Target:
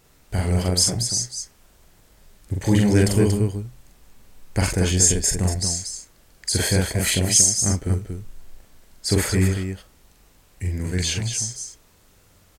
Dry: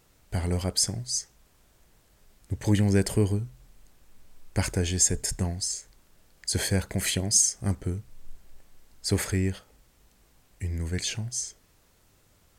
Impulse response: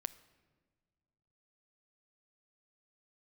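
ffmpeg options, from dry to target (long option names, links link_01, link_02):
-af "aecho=1:1:43.73|233.2:0.794|0.501,volume=4dB"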